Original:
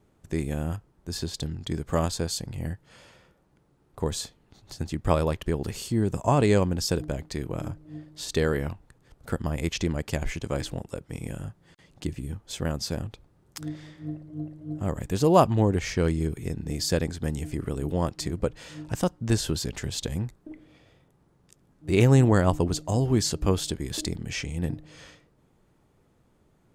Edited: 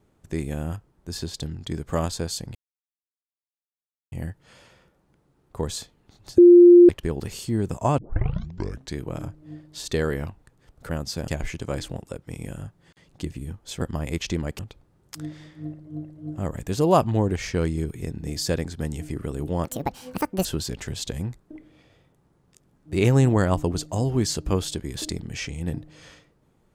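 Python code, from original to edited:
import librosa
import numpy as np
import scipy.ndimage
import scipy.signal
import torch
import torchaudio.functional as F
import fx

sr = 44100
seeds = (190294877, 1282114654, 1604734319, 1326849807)

y = fx.edit(x, sr, fx.insert_silence(at_s=2.55, length_s=1.57),
    fx.bleep(start_s=4.81, length_s=0.51, hz=350.0, db=-6.5),
    fx.tape_start(start_s=6.41, length_s=0.98),
    fx.swap(start_s=9.32, length_s=0.78, other_s=12.63, other_length_s=0.39),
    fx.speed_span(start_s=18.08, length_s=1.33, speed=1.66), tone=tone)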